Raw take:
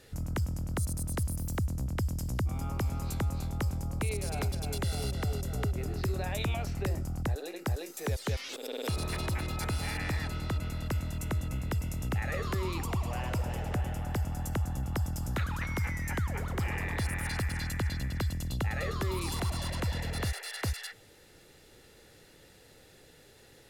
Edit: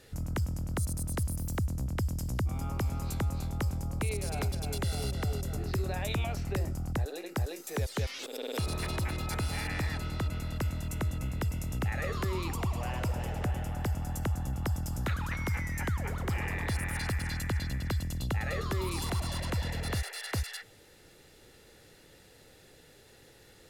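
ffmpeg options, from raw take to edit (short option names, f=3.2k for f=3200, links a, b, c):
-filter_complex "[0:a]asplit=2[a][b];[a]atrim=end=5.572[c];[b]atrim=start=5.868[d];[c][d]acrossfade=d=0.004:c1=hsin:c2=hsin"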